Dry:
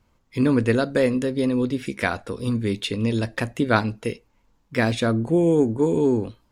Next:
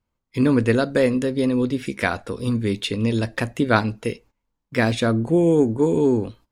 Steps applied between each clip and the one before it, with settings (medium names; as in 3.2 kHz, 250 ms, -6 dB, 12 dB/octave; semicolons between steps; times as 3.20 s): gate -48 dBFS, range -16 dB; trim +1.5 dB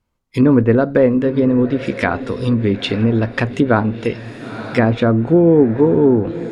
echo that smears into a reverb 935 ms, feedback 42%, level -14.5 dB; low-pass that closes with the level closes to 1.3 kHz, closed at -16 dBFS; loudness maximiser +7 dB; trim -1 dB